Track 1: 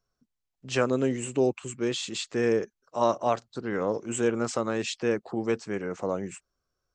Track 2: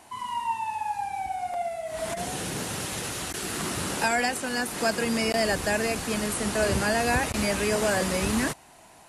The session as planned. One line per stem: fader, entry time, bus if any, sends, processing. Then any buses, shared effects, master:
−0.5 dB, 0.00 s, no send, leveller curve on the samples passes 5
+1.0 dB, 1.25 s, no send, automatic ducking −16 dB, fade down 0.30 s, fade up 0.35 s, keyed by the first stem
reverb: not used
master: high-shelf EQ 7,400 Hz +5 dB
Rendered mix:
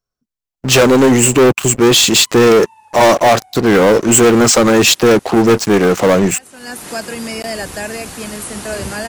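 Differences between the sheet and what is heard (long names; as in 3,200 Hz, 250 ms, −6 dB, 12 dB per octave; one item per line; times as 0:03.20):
stem 1 −0.5 dB → +6.5 dB
stem 2: entry 1.25 s → 2.10 s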